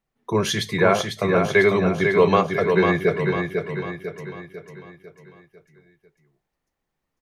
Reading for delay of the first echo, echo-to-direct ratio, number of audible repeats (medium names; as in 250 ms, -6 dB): 498 ms, -4.0 dB, 5